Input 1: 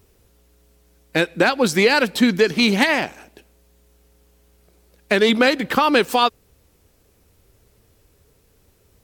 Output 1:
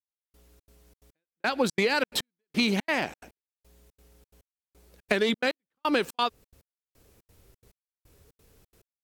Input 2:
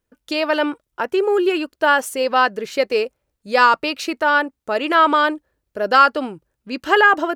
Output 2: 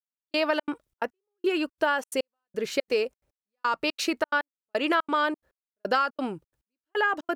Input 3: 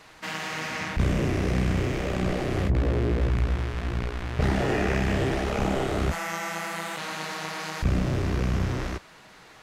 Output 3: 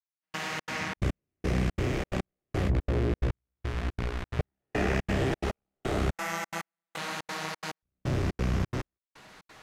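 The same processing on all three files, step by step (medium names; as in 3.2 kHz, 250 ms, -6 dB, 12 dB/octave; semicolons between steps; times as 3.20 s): compression 10:1, threshold -19 dBFS; trance gate "....xxx.xxx.x" 177 bpm -60 dB; trim -1.5 dB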